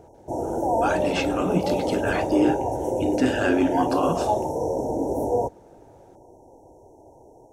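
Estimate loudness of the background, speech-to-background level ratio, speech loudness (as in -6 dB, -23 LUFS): -26.0 LUFS, 0.5 dB, -25.5 LUFS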